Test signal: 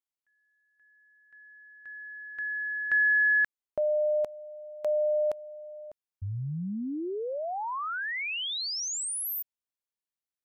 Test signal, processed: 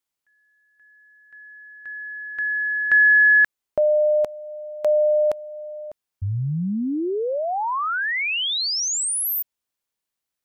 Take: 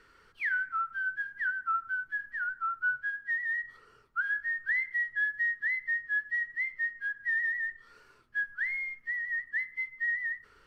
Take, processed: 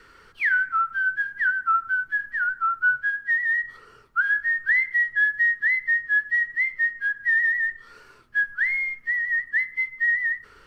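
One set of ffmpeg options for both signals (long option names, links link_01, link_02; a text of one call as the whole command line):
ffmpeg -i in.wav -af "adynamicequalizer=threshold=0.00794:dfrequency=640:dqfactor=8:tfrequency=640:tqfactor=8:attack=5:release=100:ratio=0.375:range=2:mode=cutabove:tftype=bell,volume=9dB" out.wav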